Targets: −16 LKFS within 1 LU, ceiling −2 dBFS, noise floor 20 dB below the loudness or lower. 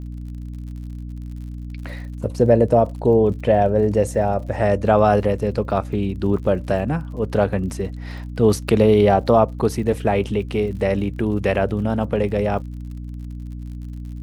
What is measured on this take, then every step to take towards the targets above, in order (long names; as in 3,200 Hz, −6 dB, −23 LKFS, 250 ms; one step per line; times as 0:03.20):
crackle rate 56 per second; mains hum 60 Hz; hum harmonics up to 300 Hz; level of the hum −29 dBFS; integrated loudness −19.5 LKFS; sample peak −2.0 dBFS; target loudness −16.0 LKFS
→ click removal
hum removal 60 Hz, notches 5
level +3.5 dB
brickwall limiter −2 dBFS